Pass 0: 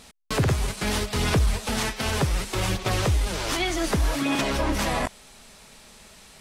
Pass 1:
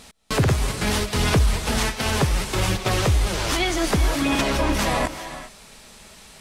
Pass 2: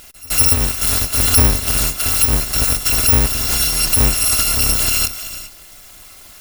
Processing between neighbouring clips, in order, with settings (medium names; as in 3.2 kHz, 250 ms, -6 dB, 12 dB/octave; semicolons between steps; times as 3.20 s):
reverberation, pre-delay 110 ms, DRR 11 dB; trim +3 dB
bit-reversed sample order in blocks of 256 samples; pre-echo 161 ms -23 dB; trim +5.5 dB